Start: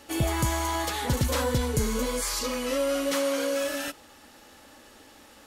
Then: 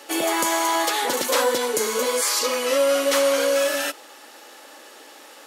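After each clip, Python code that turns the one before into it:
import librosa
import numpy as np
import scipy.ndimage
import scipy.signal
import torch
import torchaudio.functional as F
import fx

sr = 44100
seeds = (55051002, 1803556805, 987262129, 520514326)

y = scipy.signal.sosfilt(scipy.signal.butter(4, 340.0, 'highpass', fs=sr, output='sos'), x)
y = y * librosa.db_to_amplitude(8.0)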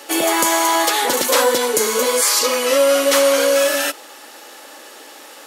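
y = fx.high_shelf(x, sr, hz=8200.0, db=3.5)
y = y * librosa.db_to_amplitude(5.0)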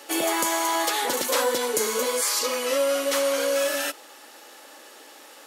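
y = fx.rider(x, sr, range_db=10, speed_s=0.5)
y = y * librosa.db_to_amplitude(-8.0)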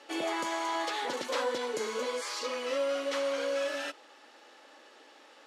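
y = scipy.signal.sosfilt(scipy.signal.butter(2, 4500.0, 'lowpass', fs=sr, output='sos'), x)
y = y * librosa.db_to_amplitude(-7.5)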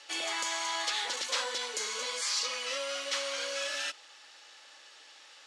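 y = fx.weighting(x, sr, curve='ITU-R 468')
y = y * librosa.db_to_amplitude(-3.5)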